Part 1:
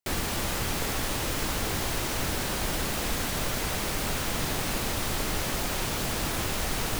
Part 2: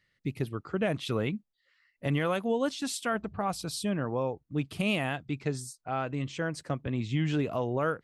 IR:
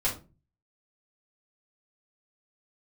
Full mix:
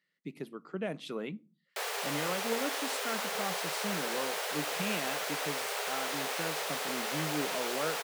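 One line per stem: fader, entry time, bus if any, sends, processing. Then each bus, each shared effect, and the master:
-1.5 dB, 1.70 s, no send, Chebyshev high-pass 400 Hz, order 8; treble shelf 5.2 kHz -5 dB
-7.0 dB, 0.00 s, send -23.5 dB, elliptic high-pass 160 Hz, stop band 40 dB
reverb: on, RT60 0.30 s, pre-delay 3 ms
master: none

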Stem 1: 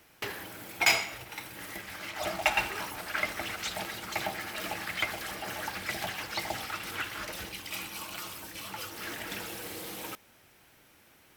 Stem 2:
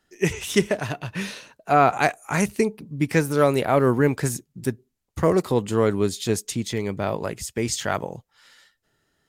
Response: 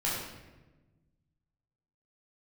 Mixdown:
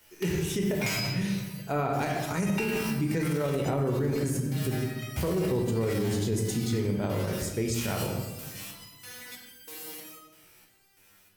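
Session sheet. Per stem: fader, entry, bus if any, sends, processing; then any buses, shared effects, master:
-1.5 dB, 0.00 s, send -4 dB, resonator arpeggio 3.1 Hz 61–1600 Hz
-11.0 dB, 0.00 s, send -5 dB, tilt shelf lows +7 dB, about 680 Hz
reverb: on, RT60 1.2 s, pre-delay 10 ms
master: treble shelf 3.2 kHz +10.5 dB; peak limiter -20 dBFS, peak gain reduction 10.5 dB

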